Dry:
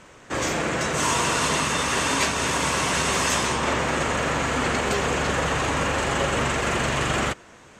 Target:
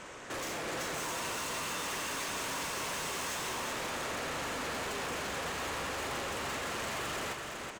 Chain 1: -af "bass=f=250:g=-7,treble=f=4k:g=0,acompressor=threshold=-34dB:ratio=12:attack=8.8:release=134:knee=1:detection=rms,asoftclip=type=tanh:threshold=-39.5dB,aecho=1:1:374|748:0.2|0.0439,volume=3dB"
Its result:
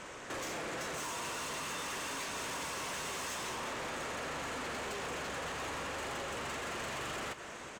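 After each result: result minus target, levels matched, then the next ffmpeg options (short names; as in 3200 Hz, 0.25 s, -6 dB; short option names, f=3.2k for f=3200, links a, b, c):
compressor: peak gain reduction +6.5 dB; echo-to-direct -9 dB
-af "bass=f=250:g=-7,treble=f=4k:g=0,acompressor=threshold=-27dB:ratio=12:attack=8.8:release=134:knee=1:detection=rms,asoftclip=type=tanh:threshold=-39.5dB,aecho=1:1:374|748:0.2|0.0439,volume=3dB"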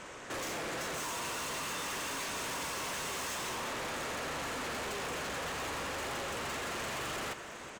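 echo-to-direct -9 dB
-af "bass=f=250:g=-7,treble=f=4k:g=0,acompressor=threshold=-27dB:ratio=12:attack=8.8:release=134:knee=1:detection=rms,asoftclip=type=tanh:threshold=-39.5dB,aecho=1:1:374|748|1122:0.562|0.124|0.0272,volume=3dB"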